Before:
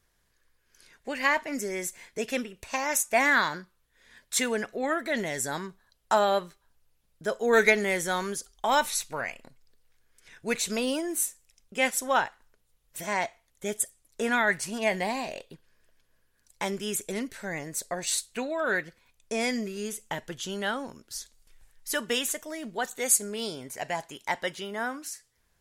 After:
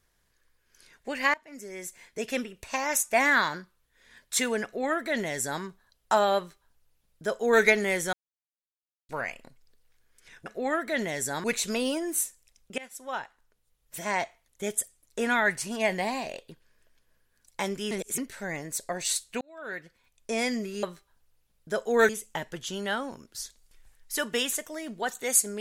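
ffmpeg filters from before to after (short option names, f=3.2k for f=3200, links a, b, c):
-filter_complex "[0:a]asplit=12[a][b][c][d][e][f][g][h][i][j][k][l];[a]atrim=end=1.34,asetpts=PTS-STARTPTS,afade=t=out:st=1.336:d=0.004:c=hsin:silence=0.0630957[m];[b]atrim=start=1.34:end=8.13,asetpts=PTS-STARTPTS,afade=t=in:d=1.05:silence=0.0630957,afade=t=out:st=6.786:d=0.004:c=hsin[n];[c]atrim=start=8.13:end=9.09,asetpts=PTS-STARTPTS,volume=0[o];[d]atrim=start=9.09:end=10.462,asetpts=PTS-STARTPTS,afade=t=in:d=0.004:c=hsin[p];[e]atrim=start=4.638:end=5.622[q];[f]atrim=start=10.458:end=11.8,asetpts=PTS-STARTPTS,afade=t=out:st=1.338:d=0.004:c=hsin:silence=0.0707946[r];[g]atrim=start=11.8:end=16.932,asetpts=PTS-STARTPTS,afade=t=in:d=1.29:silence=0.0707946[s];[h]atrim=start=16.928:end=17.202,asetpts=PTS-STARTPTS,areverse[t];[i]atrim=start=17.198:end=18.43,asetpts=PTS-STARTPTS,afade=t=out:st=1.228:d=0.004:c=hsin[u];[j]atrim=start=18.43:end=19.852,asetpts=PTS-STARTPTS,afade=t=in:d=0.92[v];[k]atrim=start=6.368:end=7.632[w];[l]atrim=start=19.848[x];[m][n][o][p]concat=n=4:v=0:a=1[y];[y][q]acrossfade=d=0.004:c1=hsin:c2=hsin[z];[r][s]concat=n=2:v=0:a=1[aa];[z][aa]acrossfade=d=0.004:c1=hsin:c2=hsin[ab];[ab][t]acrossfade=d=0.004:c1=hsin:c2=hsin[ac];[u][v]concat=n=2:v=0:a=1[ad];[ac][ad]acrossfade=d=0.004:c1=hsin:c2=hsin[ae];[ae][w]acrossfade=d=0.004:c1=hsin:c2=hsin[af];[af][x]acrossfade=d=0.004:c1=hsin:c2=hsin"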